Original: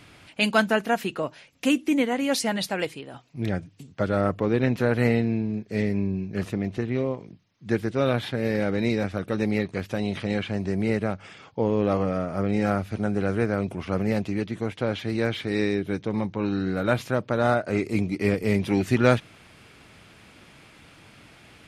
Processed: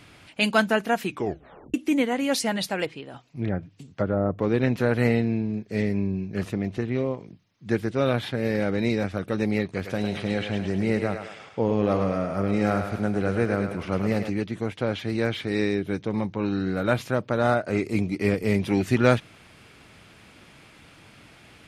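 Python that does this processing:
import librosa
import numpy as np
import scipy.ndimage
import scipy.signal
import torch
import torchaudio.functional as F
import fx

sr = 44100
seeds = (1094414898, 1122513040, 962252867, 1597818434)

y = fx.env_lowpass_down(x, sr, base_hz=850.0, full_db=-19.5, at=(2.85, 4.38), fade=0.02)
y = fx.echo_thinned(y, sr, ms=105, feedback_pct=54, hz=420.0, wet_db=-6.0, at=(9.71, 14.3))
y = fx.edit(y, sr, fx.tape_stop(start_s=1.05, length_s=0.69), tone=tone)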